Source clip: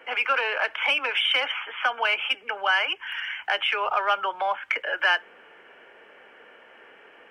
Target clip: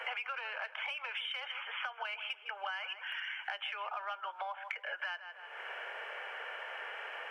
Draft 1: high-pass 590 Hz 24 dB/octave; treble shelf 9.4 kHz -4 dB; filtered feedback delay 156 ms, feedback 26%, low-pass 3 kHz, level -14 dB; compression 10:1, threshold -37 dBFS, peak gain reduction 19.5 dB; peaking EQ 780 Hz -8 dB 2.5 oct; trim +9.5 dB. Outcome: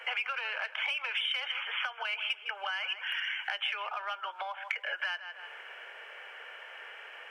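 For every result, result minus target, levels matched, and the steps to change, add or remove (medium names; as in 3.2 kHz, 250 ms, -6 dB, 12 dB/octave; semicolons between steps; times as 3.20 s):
compression: peak gain reduction -9.5 dB; 1 kHz band -4.5 dB
change: compression 10:1, threshold -47.5 dBFS, peak gain reduction 29 dB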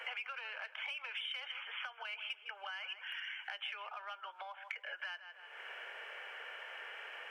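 1 kHz band -3.5 dB
remove: peaking EQ 780 Hz -8 dB 2.5 oct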